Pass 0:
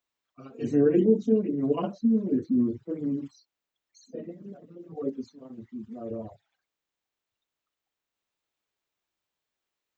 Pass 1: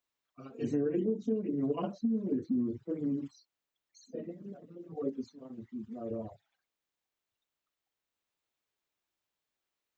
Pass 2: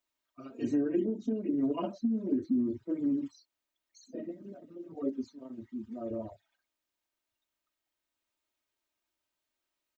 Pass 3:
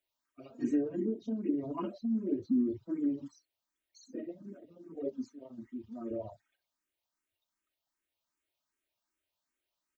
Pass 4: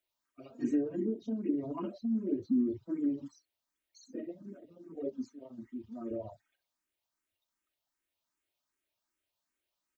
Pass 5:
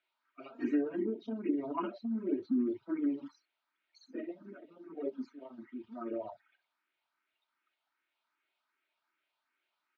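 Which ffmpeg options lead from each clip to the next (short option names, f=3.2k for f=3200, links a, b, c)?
-af "acompressor=threshold=-25dB:ratio=6,volume=-2.5dB"
-af "aecho=1:1:3.2:0.58"
-filter_complex "[0:a]asplit=2[a][b];[b]afreqshift=2.6[c];[a][c]amix=inputs=2:normalize=1,volume=1dB"
-filter_complex "[0:a]acrossover=split=460[a][b];[b]acompressor=threshold=-39dB:ratio=6[c];[a][c]amix=inputs=2:normalize=0"
-af "highpass=330,equalizer=f=510:t=q:w=4:g=-7,equalizer=f=900:t=q:w=4:g=4,equalizer=f=1.4k:t=q:w=4:g=10,equalizer=f=2.3k:t=q:w=4:g=6,lowpass=f=4k:w=0.5412,lowpass=f=4k:w=1.3066,volume=4dB"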